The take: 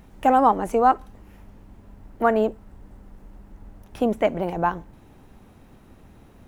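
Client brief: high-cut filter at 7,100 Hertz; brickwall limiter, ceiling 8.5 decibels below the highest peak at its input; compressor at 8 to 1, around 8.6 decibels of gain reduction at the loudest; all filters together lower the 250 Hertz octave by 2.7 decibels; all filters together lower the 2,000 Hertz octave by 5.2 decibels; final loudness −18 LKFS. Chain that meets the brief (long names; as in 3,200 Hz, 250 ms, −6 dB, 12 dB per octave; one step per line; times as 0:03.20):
low-pass filter 7,100 Hz
parametric band 250 Hz −3 dB
parametric band 2,000 Hz −7.5 dB
downward compressor 8 to 1, threshold −22 dBFS
level +14.5 dB
brickwall limiter −6 dBFS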